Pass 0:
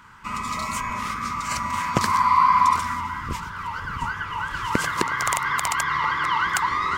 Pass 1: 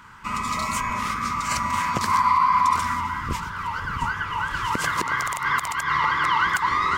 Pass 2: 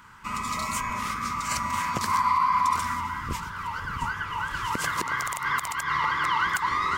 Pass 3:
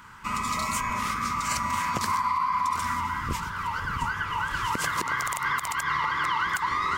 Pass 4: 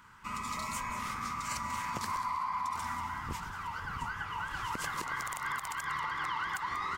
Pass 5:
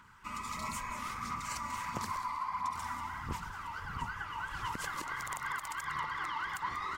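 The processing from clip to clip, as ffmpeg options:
-af "alimiter=limit=-12.5dB:level=0:latency=1:release=104,volume=2dB"
-af "highshelf=f=7.5k:g=5.5,volume=-4dB"
-af "acompressor=threshold=-26dB:ratio=4,volume=2.5dB"
-filter_complex "[0:a]asplit=4[a][b][c][d];[b]adelay=189,afreqshift=-110,volume=-12dB[e];[c]adelay=378,afreqshift=-220,volume=-21.4dB[f];[d]adelay=567,afreqshift=-330,volume=-30.7dB[g];[a][e][f][g]amix=inputs=4:normalize=0,volume=-9dB"
-af "aphaser=in_gain=1:out_gain=1:delay=3.5:decay=0.36:speed=1.5:type=sinusoidal,volume=-3dB"

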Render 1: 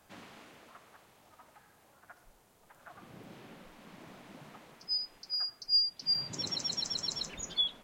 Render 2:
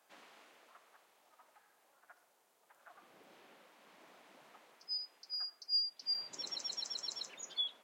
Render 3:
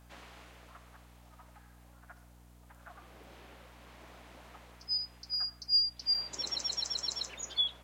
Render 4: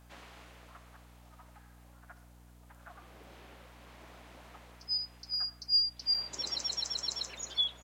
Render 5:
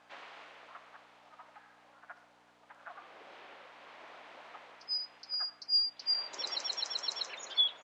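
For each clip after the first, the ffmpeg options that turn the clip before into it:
-af "highpass=430,volume=-6.5dB"
-af "aeval=exprs='val(0)+0.000708*(sin(2*PI*60*n/s)+sin(2*PI*2*60*n/s)/2+sin(2*PI*3*60*n/s)/3+sin(2*PI*4*60*n/s)/4+sin(2*PI*5*60*n/s)/5)':c=same,volume=6.5dB"
-af "aecho=1:1:383:0.0944"
-af "highpass=520,lowpass=3.7k,volume=4.5dB"

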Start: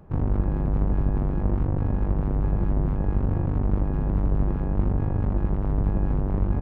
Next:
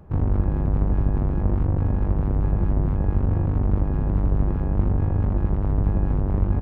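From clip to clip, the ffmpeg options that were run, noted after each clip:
-af "equalizer=f=80:w=4.4:g=9,volume=1dB"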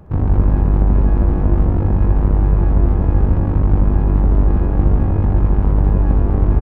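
-af "aecho=1:1:64.14|139.9:0.355|0.708,volume=5dB"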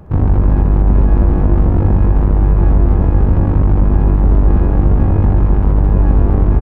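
-af "alimiter=level_in=5dB:limit=-1dB:release=50:level=0:latency=1,volume=-1dB"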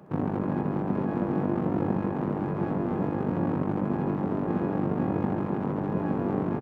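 -af "highpass=f=160:w=0.5412,highpass=f=160:w=1.3066,volume=-7dB"

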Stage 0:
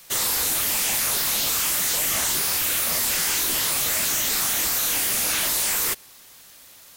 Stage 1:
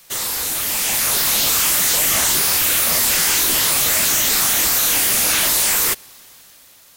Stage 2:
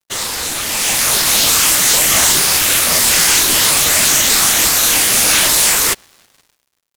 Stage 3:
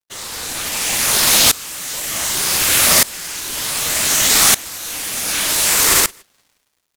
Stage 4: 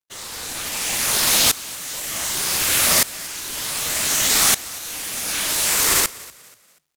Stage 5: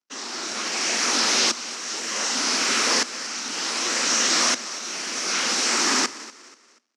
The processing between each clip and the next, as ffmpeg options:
-af "dynaudnorm=f=200:g=9:m=6.5dB"
-af "adynamicsmooth=sensitivity=2:basefreq=4k,crystalizer=i=1:c=0,acrusher=bits=6:mix=0:aa=0.5,volume=5dB"
-filter_complex "[0:a]asplit=2[a][b];[b]aecho=0:1:69|170|284:0.422|0.335|0.1[c];[a][c]amix=inputs=2:normalize=0,alimiter=level_in=10dB:limit=-1dB:release=50:level=0:latency=1,aeval=exprs='val(0)*pow(10,-22*if(lt(mod(-0.66*n/s,1),2*abs(-0.66)/1000),1-mod(-0.66*n/s,1)/(2*abs(-0.66)/1000),(mod(-0.66*n/s,1)-2*abs(-0.66)/1000)/(1-2*abs(-0.66)/1000))/20)':c=same"
-filter_complex "[0:a]asplit=4[a][b][c][d];[b]adelay=241,afreqshift=47,volume=-21dB[e];[c]adelay=482,afreqshift=94,volume=-29.9dB[f];[d]adelay=723,afreqshift=141,volume=-38.7dB[g];[a][e][f][g]amix=inputs=4:normalize=0,volume=-4.5dB"
-af "afreqshift=-120,asoftclip=type=hard:threshold=-17.5dB,highpass=f=230:w=0.5412,highpass=f=230:w=1.3066,equalizer=f=240:t=q:w=4:g=10,equalizer=f=350:t=q:w=4:g=4,equalizer=f=1.3k:t=q:w=4:g=4,equalizer=f=3.5k:t=q:w=4:g=-5,equalizer=f=5.6k:t=q:w=4:g=6,lowpass=f=6.4k:w=0.5412,lowpass=f=6.4k:w=1.3066,volume=1.5dB"

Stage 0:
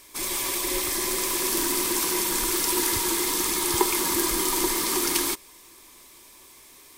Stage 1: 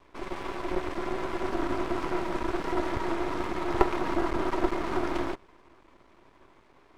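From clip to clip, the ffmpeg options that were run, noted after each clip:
-af "lowpass=1.2k,aeval=exprs='max(val(0),0)':c=same,volume=5dB"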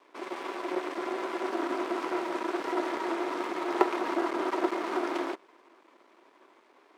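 -af "highpass=f=280:w=0.5412,highpass=f=280:w=1.3066"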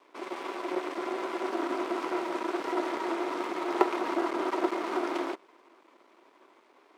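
-af "equalizer=f=1.7k:w=7.8:g=-3"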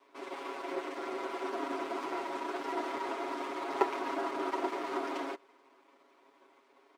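-af "aecho=1:1:7.3:0.95,volume=-6.5dB"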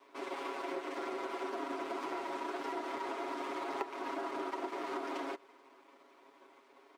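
-af "acompressor=threshold=-38dB:ratio=6,volume=2.5dB"

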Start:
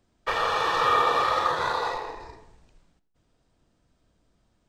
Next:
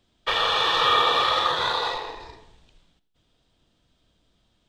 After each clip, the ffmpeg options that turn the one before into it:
-af "equalizer=f=3.4k:w=1.9:g=13"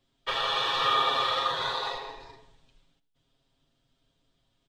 -af "aecho=1:1:7.4:0.74,volume=-7.5dB"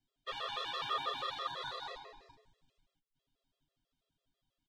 -af "afftfilt=real='re*gt(sin(2*PI*6.1*pts/sr)*(1-2*mod(floor(b*sr/1024/350),2)),0)':imag='im*gt(sin(2*PI*6.1*pts/sr)*(1-2*mod(floor(b*sr/1024/350),2)),0)':win_size=1024:overlap=0.75,volume=-9dB"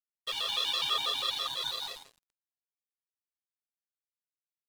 -af "aexciter=amount=3.1:drive=7.9:freq=2.5k,aeval=exprs='sgn(val(0))*max(abs(val(0))-0.00531,0)':c=same,volume=1.5dB"

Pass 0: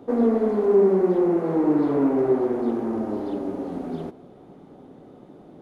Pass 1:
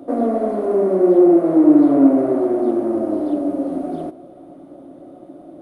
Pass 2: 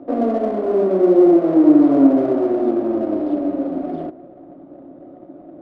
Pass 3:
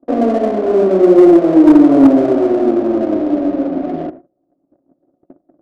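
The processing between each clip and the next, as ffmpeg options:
-af "superequalizer=6b=3.55:8b=3.98:10b=1.41:16b=3.55,volume=-1dB"
-af "adynamicsmooth=sensitivity=5:basefreq=1.6k"
-af "asoftclip=type=hard:threshold=-6dB,agate=range=-30dB:threshold=-35dB:ratio=16:detection=peak,adynamicsmooth=sensitivity=6.5:basefreq=1.4k,volume=5dB"

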